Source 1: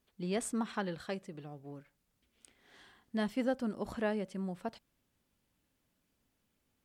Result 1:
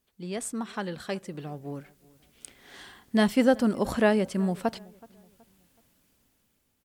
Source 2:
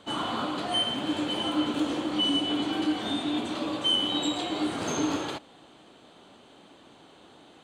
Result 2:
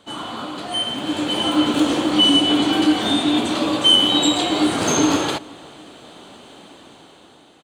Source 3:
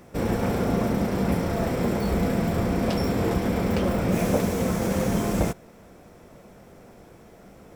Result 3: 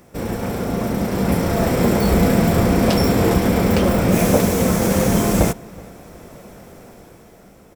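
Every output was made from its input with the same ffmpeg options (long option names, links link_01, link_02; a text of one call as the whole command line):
ffmpeg -i in.wav -filter_complex "[0:a]highshelf=frequency=6200:gain=6.5,dynaudnorm=framelen=360:gausssize=7:maxgain=11.5dB,asplit=2[link_01][link_02];[link_02]adelay=374,lowpass=frequency=2200:poles=1,volume=-23dB,asplit=2[link_03][link_04];[link_04]adelay=374,lowpass=frequency=2200:poles=1,volume=0.39,asplit=2[link_05][link_06];[link_06]adelay=374,lowpass=frequency=2200:poles=1,volume=0.39[link_07];[link_01][link_03][link_05][link_07]amix=inputs=4:normalize=0" out.wav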